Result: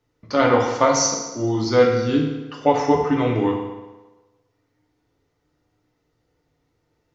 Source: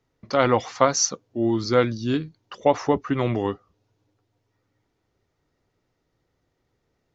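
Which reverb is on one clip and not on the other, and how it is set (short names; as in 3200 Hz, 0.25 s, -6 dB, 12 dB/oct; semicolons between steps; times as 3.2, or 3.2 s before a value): FDN reverb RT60 1.2 s, low-frequency decay 0.85×, high-frequency decay 0.8×, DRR -1.5 dB; gain -1 dB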